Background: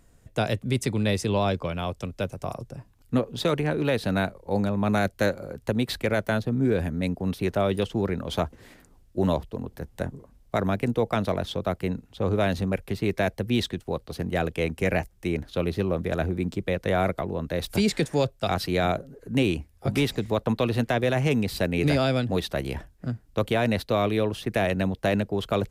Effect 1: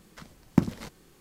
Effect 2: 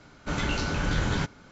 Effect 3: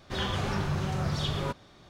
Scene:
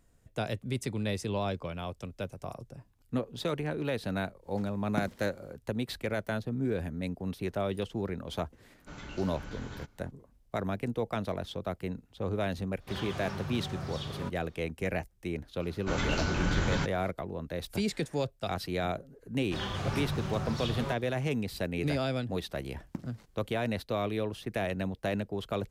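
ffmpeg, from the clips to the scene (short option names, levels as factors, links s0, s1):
-filter_complex "[1:a]asplit=2[s0][s1];[2:a]asplit=2[s2][s3];[3:a]asplit=2[s4][s5];[0:a]volume=0.398[s6];[s4]highpass=61[s7];[s0]atrim=end=1.2,asetpts=PTS-STARTPTS,volume=0.266,afade=t=in:d=0.1,afade=t=out:st=1.1:d=0.1,adelay=4400[s8];[s2]atrim=end=1.51,asetpts=PTS-STARTPTS,volume=0.15,afade=t=in:d=0.004:c=hsin,afade=t=out:st=1.506:d=0.004:c=hsin,adelay=8600[s9];[s7]atrim=end=1.89,asetpts=PTS-STARTPTS,volume=0.398,afade=t=in:d=0.05,afade=t=out:st=1.84:d=0.05,adelay=12770[s10];[s3]atrim=end=1.51,asetpts=PTS-STARTPTS,volume=0.75,afade=t=in:d=0.004:c=hsin,afade=t=out:st=1.506:d=0.004:c=hsin,adelay=15600[s11];[s5]atrim=end=1.89,asetpts=PTS-STARTPTS,volume=0.596,afade=t=in:d=0.004:c=hsin,afade=t=out:st=1.886:d=0.004:c=hsin,adelay=19410[s12];[s1]atrim=end=1.2,asetpts=PTS-STARTPTS,volume=0.126,afade=t=in:d=0.004:c=hsin,afade=t=out:st=1.196:d=0.004:c=hsin,adelay=22370[s13];[s6][s8][s9][s10][s11][s12][s13]amix=inputs=7:normalize=0"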